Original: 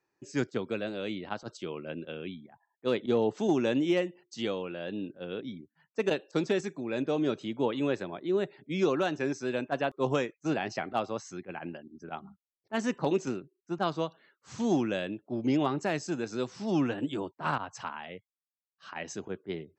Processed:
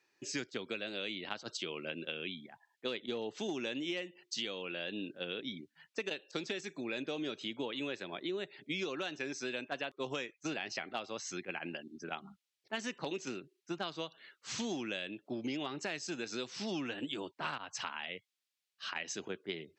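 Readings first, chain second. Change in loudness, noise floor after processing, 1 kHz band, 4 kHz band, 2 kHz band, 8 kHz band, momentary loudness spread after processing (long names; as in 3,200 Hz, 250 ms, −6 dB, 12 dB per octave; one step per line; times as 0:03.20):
−8.0 dB, below −85 dBFS, −9.0 dB, +2.5 dB, −2.0 dB, +1.5 dB, 6 LU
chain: meter weighting curve D
downward compressor 6 to 1, threshold −37 dBFS, peak gain reduction 15.5 dB
level +1 dB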